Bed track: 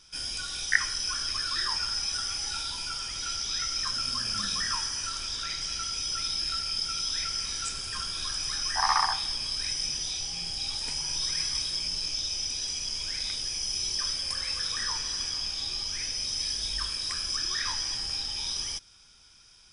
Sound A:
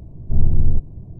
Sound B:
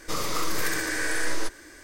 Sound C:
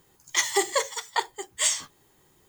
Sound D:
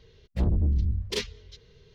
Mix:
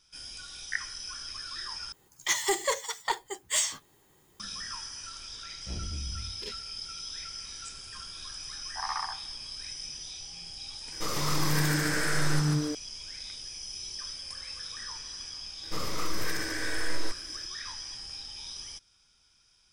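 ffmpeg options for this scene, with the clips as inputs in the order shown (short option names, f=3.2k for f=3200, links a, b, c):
-filter_complex "[2:a]asplit=2[a][b];[0:a]volume=-9dB[c];[3:a]asoftclip=type=tanh:threshold=-16.5dB[d];[a]asplit=7[e][f][g][h][i][j][k];[f]adelay=144,afreqshift=-150,volume=-3dB[l];[g]adelay=288,afreqshift=-300,volume=-9.4dB[m];[h]adelay=432,afreqshift=-450,volume=-15.8dB[n];[i]adelay=576,afreqshift=-600,volume=-22.1dB[o];[j]adelay=720,afreqshift=-750,volume=-28.5dB[p];[k]adelay=864,afreqshift=-900,volume=-34.9dB[q];[e][l][m][n][o][p][q]amix=inputs=7:normalize=0[r];[b]bass=f=250:g=5,treble=f=4k:g=-3[s];[c]asplit=2[t][u];[t]atrim=end=1.924[v];[d]atrim=end=2.48,asetpts=PTS-STARTPTS,volume=-1.5dB[w];[u]atrim=start=4.396[x];[4:a]atrim=end=1.94,asetpts=PTS-STARTPTS,volume=-13.5dB,afade=t=in:d=0.004:c=hsin,afade=t=out:st=1.936:d=0.004:c=hsin,adelay=5300[y];[r]atrim=end=1.83,asetpts=PTS-STARTPTS,volume=-4dB,afade=t=in:d=0.004:c=hsin,afade=t=out:st=1.826:d=0.004:c=hsin,adelay=10920[z];[s]atrim=end=1.83,asetpts=PTS-STARTPTS,volume=-6dB,afade=t=in:d=0.004:c=hsin,afade=t=out:st=1.826:d=0.004:c=hsin,adelay=15630[aa];[v][w]acrossfade=d=0.004:c1=hsin:c2=hsin[ab];[ab][x]acrossfade=d=0.004:c1=hsin:c2=hsin[ac];[ac][y][z][aa]amix=inputs=4:normalize=0"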